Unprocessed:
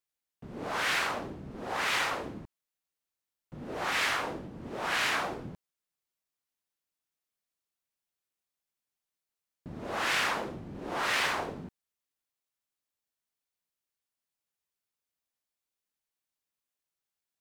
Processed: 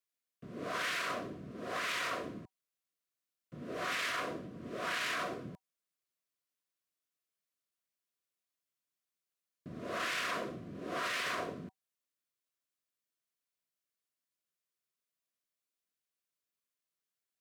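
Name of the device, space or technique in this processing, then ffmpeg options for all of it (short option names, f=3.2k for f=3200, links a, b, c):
PA system with an anti-feedback notch: -af "highpass=110,asuperstop=centerf=850:order=20:qfactor=4.5,alimiter=level_in=0.5dB:limit=-24dB:level=0:latency=1:release=17,volume=-0.5dB,volume=-2.5dB"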